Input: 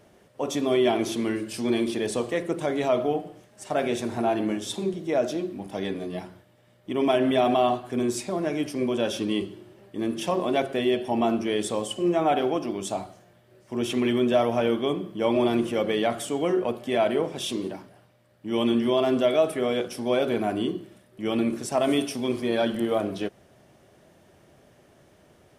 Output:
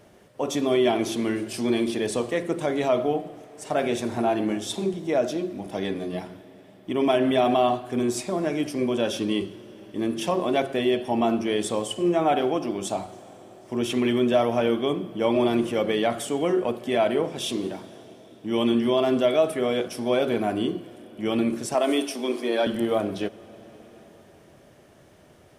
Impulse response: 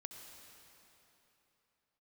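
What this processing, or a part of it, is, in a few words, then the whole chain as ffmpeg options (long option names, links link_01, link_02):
ducked reverb: -filter_complex "[0:a]asettb=1/sr,asplit=3[link_01][link_02][link_03];[link_01]atrim=end=21.744[link_04];[link_02]atrim=start=21.74:end=22.67,asetpts=PTS-STARTPTS,afade=type=in:duration=0.004:curve=qsin,afade=type=out:start_time=0.926:duration=0.004:curve=qsin,highpass=frequency=260:width=0.5412,highpass=frequency=260:width=1.3066[link_05];[link_03]atrim=start=22.666[link_06];[link_04][link_05]acrossfade=duration=0.004:curve1=hsin:curve2=qsin[link_07];[link_07][link_06]acrossfade=duration=0.004:curve1=qsin:curve2=hsin,asplit=3[link_08][link_09][link_10];[1:a]atrim=start_sample=2205[link_11];[link_09][link_11]afir=irnorm=-1:irlink=0[link_12];[link_10]apad=whole_len=1128473[link_13];[link_12][link_13]sidechaincompress=threshold=-27dB:ratio=8:attack=6.7:release=1150,volume=-3dB[link_14];[link_08][link_14]amix=inputs=2:normalize=0"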